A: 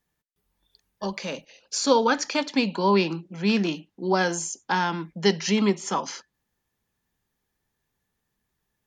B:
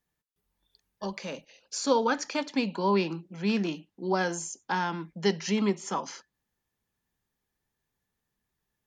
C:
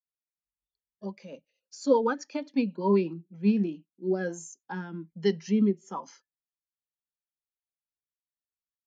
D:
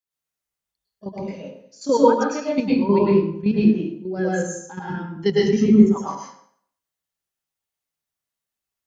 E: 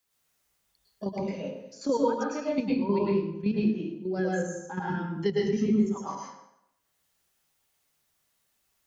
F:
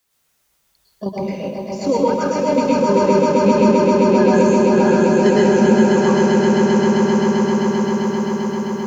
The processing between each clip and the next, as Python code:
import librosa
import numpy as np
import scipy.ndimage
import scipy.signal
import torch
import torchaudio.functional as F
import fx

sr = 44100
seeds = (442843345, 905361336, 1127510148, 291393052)

y1 = fx.dynamic_eq(x, sr, hz=3900.0, q=0.89, threshold_db=-39.0, ratio=4.0, max_db=-3)
y1 = F.gain(torch.from_numpy(y1), -4.5).numpy()
y2 = fx.rotary_switch(y1, sr, hz=8.0, then_hz=1.2, switch_at_s=3.38)
y2 = fx.spectral_expand(y2, sr, expansion=1.5)
y2 = F.gain(torch.from_numpy(y2), 3.5).numpy()
y3 = fx.level_steps(y2, sr, step_db=11)
y3 = fx.echo_feedback(y3, sr, ms=98, feedback_pct=34, wet_db=-17.0)
y3 = fx.rev_plate(y3, sr, seeds[0], rt60_s=0.61, hf_ratio=0.65, predelay_ms=95, drr_db=-6.0)
y3 = F.gain(torch.from_numpy(y3), 6.0).numpy()
y4 = fx.band_squash(y3, sr, depth_pct=70)
y4 = F.gain(torch.from_numpy(y4), -8.5).numpy()
y5 = fx.echo_swell(y4, sr, ms=131, loudest=8, wet_db=-5)
y5 = F.gain(torch.from_numpy(y5), 8.0).numpy()